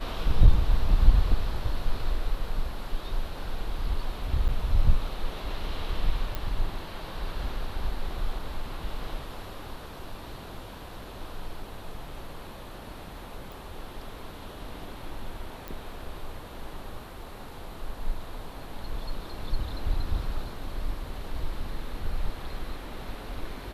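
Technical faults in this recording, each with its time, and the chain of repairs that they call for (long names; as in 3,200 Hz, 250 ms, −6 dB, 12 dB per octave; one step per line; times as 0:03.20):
0:04.48–0:04.49: drop-out 7 ms
0:06.35: click −18 dBFS
0:13.52: click
0:15.68: click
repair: click removal
repair the gap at 0:04.48, 7 ms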